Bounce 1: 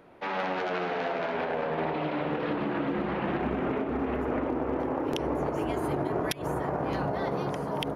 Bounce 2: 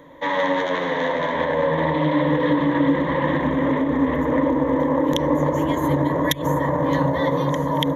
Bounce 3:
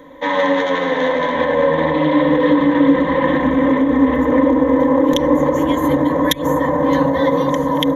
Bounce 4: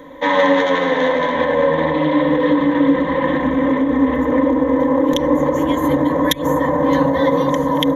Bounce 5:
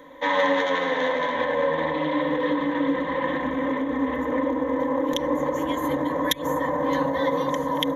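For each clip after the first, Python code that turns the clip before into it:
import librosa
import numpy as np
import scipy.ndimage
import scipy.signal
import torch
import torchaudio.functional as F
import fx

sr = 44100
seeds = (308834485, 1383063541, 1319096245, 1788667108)

y1 = fx.ripple_eq(x, sr, per_octave=1.1, db=17)
y1 = y1 * librosa.db_to_amplitude(6.0)
y2 = y1 + 0.58 * np.pad(y1, (int(3.9 * sr / 1000.0), 0))[:len(y1)]
y2 = y2 * librosa.db_to_amplitude(3.0)
y3 = fx.rider(y2, sr, range_db=10, speed_s=2.0)
y3 = y3 * librosa.db_to_amplitude(-1.0)
y4 = fx.low_shelf(y3, sr, hz=420.0, db=-7.5)
y4 = y4 * librosa.db_to_amplitude(-5.0)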